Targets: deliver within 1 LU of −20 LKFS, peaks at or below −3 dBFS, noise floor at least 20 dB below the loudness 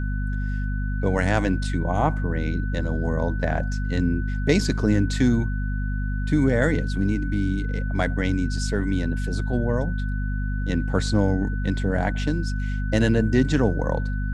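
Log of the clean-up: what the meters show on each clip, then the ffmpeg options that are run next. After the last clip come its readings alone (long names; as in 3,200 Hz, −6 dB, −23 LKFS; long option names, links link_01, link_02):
mains hum 50 Hz; hum harmonics up to 250 Hz; level of the hum −23 dBFS; interfering tone 1,500 Hz; level of the tone −37 dBFS; integrated loudness −24.0 LKFS; sample peak −5.5 dBFS; target loudness −20.0 LKFS
→ -af "bandreject=frequency=50:width_type=h:width=4,bandreject=frequency=100:width_type=h:width=4,bandreject=frequency=150:width_type=h:width=4,bandreject=frequency=200:width_type=h:width=4,bandreject=frequency=250:width_type=h:width=4"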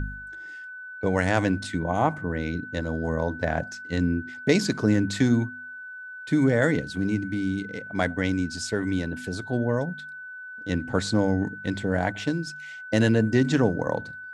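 mains hum none found; interfering tone 1,500 Hz; level of the tone −37 dBFS
→ -af "bandreject=frequency=1500:width=30"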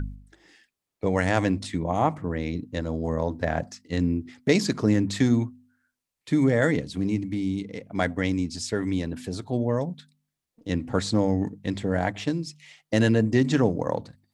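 interfering tone none found; integrated loudness −26.0 LKFS; sample peak −6.5 dBFS; target loudness −20.0 LKFS
→ -af "volume=6dB,alimiter=limit=-3dB:level=0:latency=1"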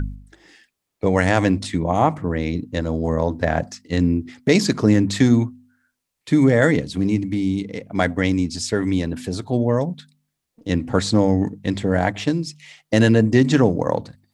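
integrated loudness −20.0 LKFS; sample peak −3.0 dBFS; background noise floor −79 dBFS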